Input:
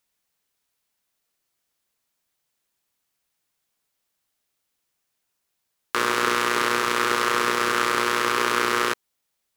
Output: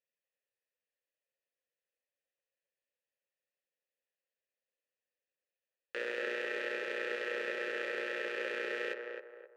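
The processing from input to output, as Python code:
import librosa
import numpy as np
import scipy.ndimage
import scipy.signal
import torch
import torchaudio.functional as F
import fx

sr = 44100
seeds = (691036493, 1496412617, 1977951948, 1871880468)

y = fx.vowel_filter(x, sr, vowel='e')
y = fx.echo_banded(y, sr, ms=262, feedback_pct=42, hz=710.0, wet_db=-3)
y = y * librosa.db_to_amplitude(-2.0)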